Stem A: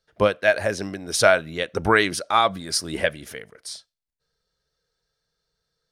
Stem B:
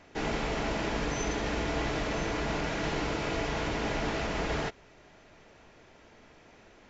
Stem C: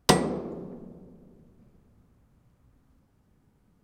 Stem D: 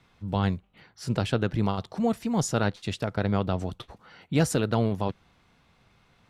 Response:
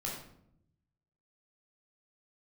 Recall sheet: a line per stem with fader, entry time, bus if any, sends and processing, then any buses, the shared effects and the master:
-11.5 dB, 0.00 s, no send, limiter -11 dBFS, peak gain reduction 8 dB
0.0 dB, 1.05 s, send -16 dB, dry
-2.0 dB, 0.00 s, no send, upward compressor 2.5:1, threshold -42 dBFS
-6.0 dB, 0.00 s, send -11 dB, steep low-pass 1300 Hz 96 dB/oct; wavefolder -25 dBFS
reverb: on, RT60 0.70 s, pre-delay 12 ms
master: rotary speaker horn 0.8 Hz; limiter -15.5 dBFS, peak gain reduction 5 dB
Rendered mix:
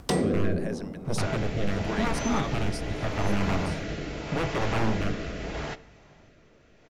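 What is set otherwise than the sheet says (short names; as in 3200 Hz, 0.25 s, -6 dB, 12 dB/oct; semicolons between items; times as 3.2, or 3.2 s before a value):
stem C -2.0 dB -> +8.5 dB; stem D -6.0 dB -> +2.5 dB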